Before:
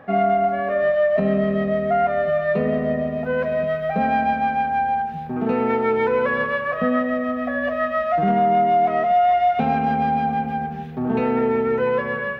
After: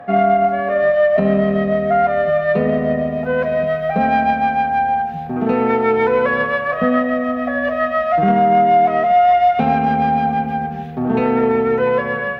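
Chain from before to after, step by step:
steady tone 710 Hz −38 dBFS
harmonic generator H 3 −24 dB, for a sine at −8.5 dBFS
level +5.5 dB

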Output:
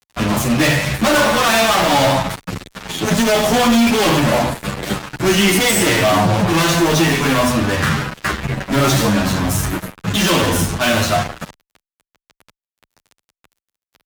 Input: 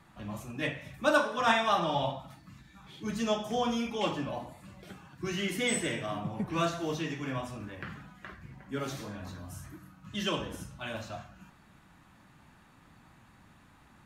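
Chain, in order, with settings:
fuzz pedal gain 48 dB, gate −49 dBFS
barber-pole flanger 9.5 ms −0.27 Hz
level +3.5 dB

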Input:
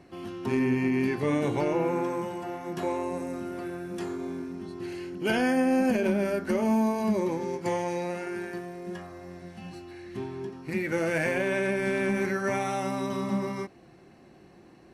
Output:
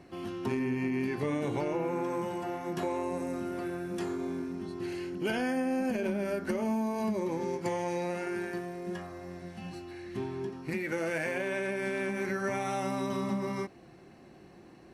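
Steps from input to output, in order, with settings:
downward compressor, threshold −28 dBFS, peak gain reduction 7 dB
0:10.74–0:12.28: low-shelf EQ 140 Hz −9 dB

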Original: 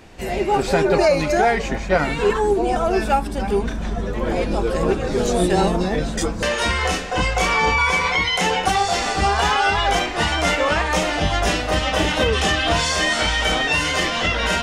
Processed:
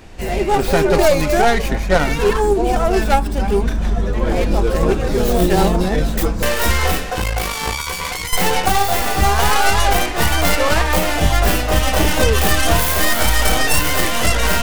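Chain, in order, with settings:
stylus tracing distortion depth 0.3 ms
low-shelf EQ 65 Hz +10 dB
0:07.14–0:08.33: tube saturation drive 14 dB, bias 0.5
high-shelf EQ 8,800 Hz +4 dB
level +2 dB

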